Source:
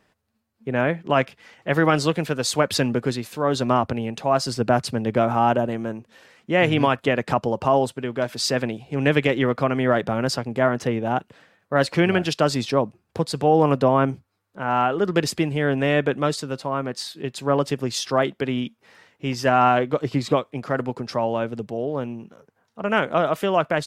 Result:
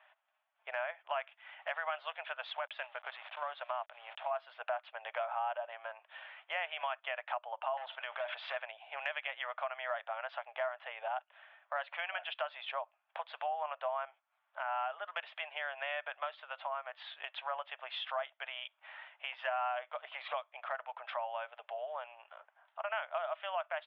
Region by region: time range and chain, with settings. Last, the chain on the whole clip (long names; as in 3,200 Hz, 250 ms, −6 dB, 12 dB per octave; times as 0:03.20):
0:02.52–0:04.31: hold until the input has moved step −35.5 dBFS + output level in coarse steps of 11 dB
0:07.77–0:08.56: high-pass filter 320 Hz + hard clipping −21.5 dBFS + envelope flattener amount 70%
whole clip: Chebyshev band-pass filter 620–3,400 Hz, order 5; downward compressor 3 to 1, threshold −43 dBFS; level +2.5 dB